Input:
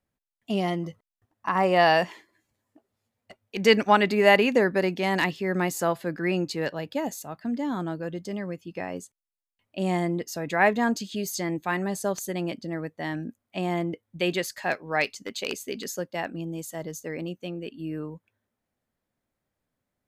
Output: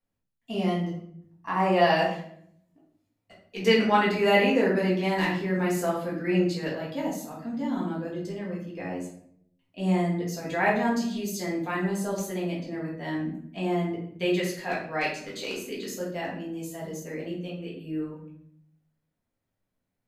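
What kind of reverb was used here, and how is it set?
rectangular room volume 120 cubic metres, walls mixed, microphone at 1.7 metres
level −9 dB

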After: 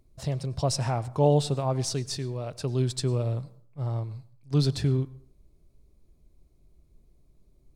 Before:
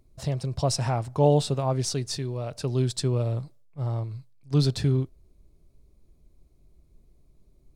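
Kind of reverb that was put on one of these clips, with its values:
dense smooth reverb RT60 0.53 s, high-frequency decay 0.6×, pre-delay 85 ms, DRR 19.5 dB
level −1.5 dB

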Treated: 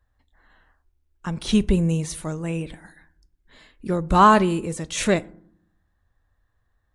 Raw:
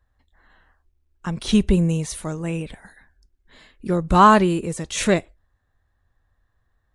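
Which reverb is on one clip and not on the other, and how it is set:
feedback delay network reverb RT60 0.6 s, low-frequency decay 1.6×, high-frequency decay 0.45×, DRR 18 dB
level −1.5 dB

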